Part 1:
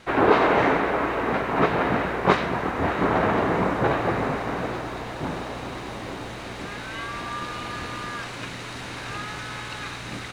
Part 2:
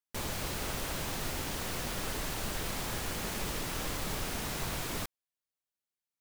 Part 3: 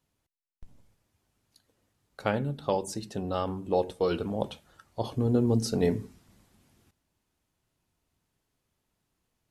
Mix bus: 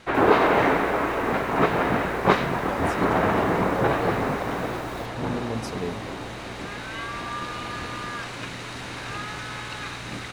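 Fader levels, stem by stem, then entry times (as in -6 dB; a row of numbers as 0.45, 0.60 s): 0.0, -11.0, -6.0 dB; 0.00, 0.00, 0.00 s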